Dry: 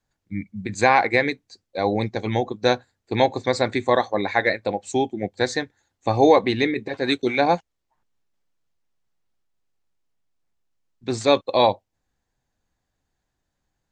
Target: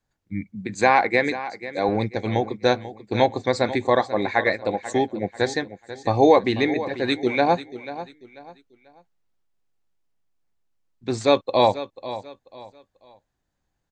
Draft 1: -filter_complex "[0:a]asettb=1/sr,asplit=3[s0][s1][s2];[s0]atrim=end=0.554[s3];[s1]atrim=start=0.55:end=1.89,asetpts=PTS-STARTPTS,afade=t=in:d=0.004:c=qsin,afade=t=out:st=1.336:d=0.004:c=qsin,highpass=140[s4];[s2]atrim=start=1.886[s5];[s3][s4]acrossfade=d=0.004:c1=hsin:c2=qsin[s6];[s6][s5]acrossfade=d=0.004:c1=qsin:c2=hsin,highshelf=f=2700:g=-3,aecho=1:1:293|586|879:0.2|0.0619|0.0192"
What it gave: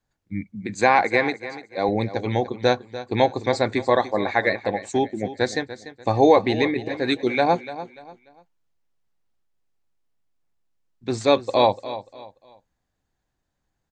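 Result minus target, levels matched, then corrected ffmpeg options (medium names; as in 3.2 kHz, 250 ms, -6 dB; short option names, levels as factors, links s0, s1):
echo 197 ms early
-filter_complex "[0:a]asettb=1/sr,asplit=3[s0][s1][s2];[s0]atrim=end=0.554[s3];[s1]atrim=start=0.55:end=1.89,asetpts=PTS-STARTPTS,afade=t=in:d=0.004:c=qsin,afade=t=out:st=1.336:d=0.004:c=qsin,highpass=140[s4];[s2]atrim=start=1.886[s5];[s3][s4]acrossfade=d=0.004:c1=hsin:c2=qsin[s6];[s6][s5]acrossfade=d=0.004:c1=qsin:c2=hsin,highshelf=f=2700:g=-3,aecho=1:1:490|980|1470:0.2|0.0619|0.0192"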